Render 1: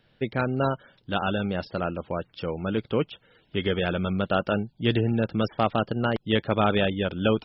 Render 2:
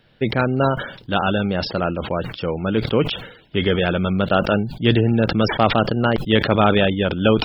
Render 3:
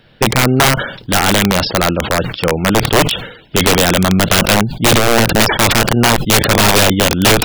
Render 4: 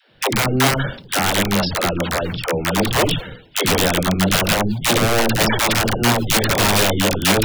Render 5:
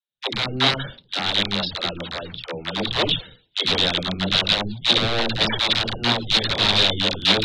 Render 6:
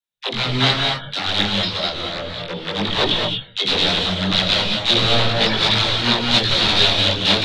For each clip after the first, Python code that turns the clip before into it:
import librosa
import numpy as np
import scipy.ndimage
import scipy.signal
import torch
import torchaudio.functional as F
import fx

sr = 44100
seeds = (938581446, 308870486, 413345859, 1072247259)

y1 = fx.sustainer(x, sr, db_per_s=89.0)
y1 = y1 * librosa.db_to_amplitude(6.5)
y2 = (np.mod(10.0 ** (12.0 / 20.0) * y1 + 1.0, 2.0) - 1.0) / 10.0 ** (12.0 / 20.0)
y2 = y2 * librosa.db_to_amplitude(8.5)
y3 = fx.dispersion(y2, sr, late='lows', ms=122.0, hz=350.0)
y3 = y3 * librosa.db_to_amplitude(-5.5)
y4 = fx.lowpass_res(y3, sr, hz=3800.0, q=6.1)
y4 = fx.band_widen(y4, sr, depth_pct=100)
y4 = y4 * librosa.db_to_amplitude(-7.5)
y5 = fx.rev_gated(y4, sr, seeds[0], gate_ms=250, shape='rising', drr_db=2.0)
y5 = fx.detune_double(y5, sr, cents=12)
y5 = y5 * librosa.db_to_amplitude(5.0)